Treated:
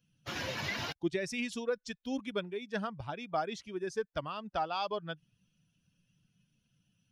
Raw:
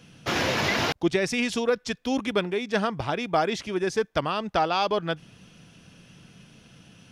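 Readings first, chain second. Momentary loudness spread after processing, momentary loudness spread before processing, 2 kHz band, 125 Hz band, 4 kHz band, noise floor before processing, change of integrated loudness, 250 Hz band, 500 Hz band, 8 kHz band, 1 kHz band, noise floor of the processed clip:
5 LU, 5 LU, -11.0 dB, -11.0 dB, -11.0 dB, -54 dBFS, -10.5 dB, -10.5 dB, -10.5 dB, -11.0 dB, -10.5 dB, -78 dBFS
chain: per-bin expansion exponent 1.5; gain -8 dB

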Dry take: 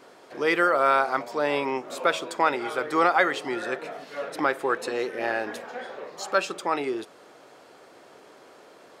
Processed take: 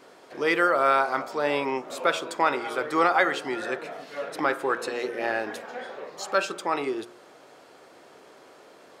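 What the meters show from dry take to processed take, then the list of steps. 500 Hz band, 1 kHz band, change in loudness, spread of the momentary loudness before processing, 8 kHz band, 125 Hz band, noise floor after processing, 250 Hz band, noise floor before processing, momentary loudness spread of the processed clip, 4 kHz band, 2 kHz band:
-0.5 dB, -0.5 dB, -0.5 dB, 16 LU, 0.0 dB, -0.5 dB, -52 dBFS, -0.5 dB, -52 dBFS, 16 LU, 0.0 dB, -0.5 dB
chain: de-hum 59.65 Hz, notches 28

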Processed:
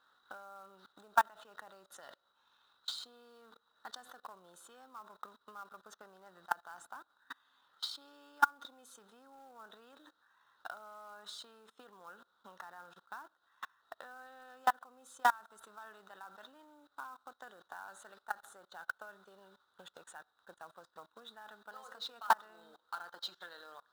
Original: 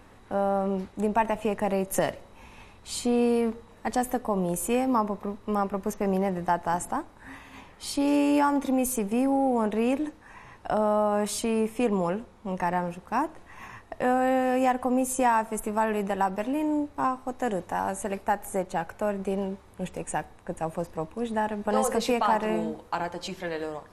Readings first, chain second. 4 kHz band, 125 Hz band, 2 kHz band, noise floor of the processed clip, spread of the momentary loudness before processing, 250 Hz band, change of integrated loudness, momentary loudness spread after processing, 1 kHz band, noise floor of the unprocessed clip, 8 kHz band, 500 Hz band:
-5.5 dB, under -35 dB, -6.0 dB, -78 dBFS, 11 LU, -36.0 dB, -12.5 dB, 24 LU, -11.5 dB, -53 dBFS, -19.0 dB, -26.0 dB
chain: level quantiser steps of 21 dB; transient shaper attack +8 dB, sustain -3 dB; double band-pass 2300 Hz, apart 1.4 oct; short-mantissa float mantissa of 2-bit; gain +7 dB

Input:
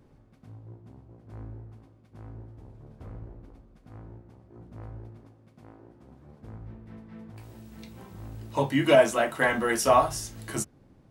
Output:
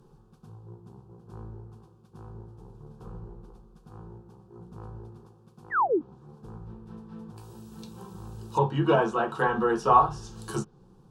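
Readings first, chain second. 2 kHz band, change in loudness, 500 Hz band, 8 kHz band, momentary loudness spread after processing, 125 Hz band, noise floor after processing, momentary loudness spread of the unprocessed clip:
-4.0 dB, -1.0 dB, -3.0 dB, under -10 dB, 24 LU, +2.5 dB, -57 dBFS, 24 LU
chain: painted sound fall, 5.7–6.01, 260–2100 Hz -26 dBFS; fixed phaser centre 410 Hz, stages 8; treble ducked by the level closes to 2200 Hz, closed at -27 dBFS; gain +5 dB

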